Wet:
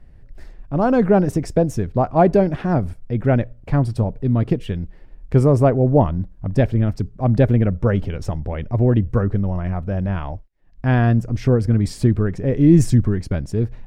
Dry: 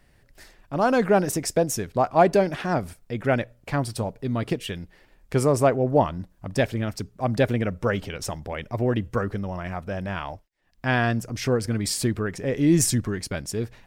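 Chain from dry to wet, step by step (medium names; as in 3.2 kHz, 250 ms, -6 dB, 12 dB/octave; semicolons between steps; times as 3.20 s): tilt EQ -3.5 dB/octave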